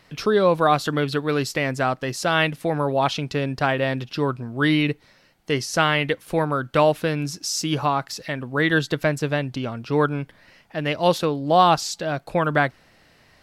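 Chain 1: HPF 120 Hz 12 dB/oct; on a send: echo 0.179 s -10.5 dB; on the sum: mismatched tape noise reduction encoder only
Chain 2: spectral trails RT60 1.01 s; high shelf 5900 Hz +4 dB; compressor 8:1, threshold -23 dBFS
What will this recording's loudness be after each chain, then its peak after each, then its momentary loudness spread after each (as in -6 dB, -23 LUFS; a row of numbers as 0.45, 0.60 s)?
-22.0, -27.0 LUFS; -2.5, -12.0 dBFS; 10, 4 LU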